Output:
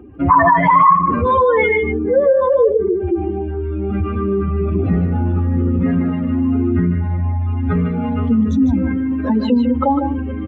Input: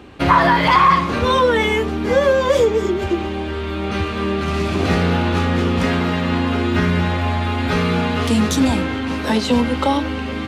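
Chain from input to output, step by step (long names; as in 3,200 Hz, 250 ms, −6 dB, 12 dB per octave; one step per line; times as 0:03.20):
expanding power law on the bin magnitudes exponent 2.4
high shelf with overshoot 3,200 Hz −7 dB, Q 1.5
on a send: single-tap delay 152 ms −7.5 dB
on the sum: level +1.5 dB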